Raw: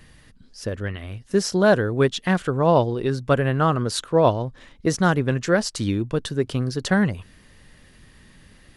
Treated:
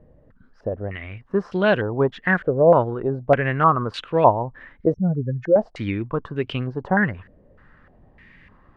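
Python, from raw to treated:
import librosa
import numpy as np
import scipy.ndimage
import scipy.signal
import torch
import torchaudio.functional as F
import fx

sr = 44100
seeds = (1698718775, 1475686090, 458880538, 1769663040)

y = fx.spec_expand(x, sr, power=3.1, at=(4.94, 5.56))
y = fx.filter_held_lowpass(y, sr, hz=3.3, low_hz=570.0, high_hz=2700.0)
y = F.gain(torch.from_numpy(y), -2.5).numpy()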